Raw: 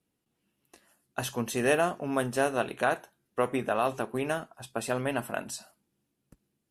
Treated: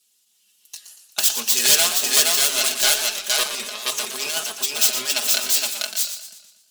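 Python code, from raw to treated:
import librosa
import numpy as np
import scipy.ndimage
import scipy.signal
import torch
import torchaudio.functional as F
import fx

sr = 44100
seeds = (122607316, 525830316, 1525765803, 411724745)

y = fx.tracing_dist(x, sr, depth_ms=0.43)
y = fx.over_compress(y, sr, threshold_db=-32.0, ratio=-0.5, at=(3.43, 5.1))
y = np.diff(y, prepend=0.0)
y = y + 10.0 ** (-3.5 / 20.0) * np.pad(y, (int(469 * sr / 1000.0), 0))[:len(y)]
y = fx.fold_sine(y, sr, drive_db=12, ceiling_db=-11.5)
y = fx.band_shelf(y, sr, hz=4800.0, db=9.0, octaves=1.7)
y = y + 0.81 * np.pad(y, (int(4.8 * sr / 1000.0), 0))[:len(y)]
y = fx.echo_warbled(y, sr, ms=118, feedback_pct=48, rate_hz=2.8, cents=118, wet_db=-9)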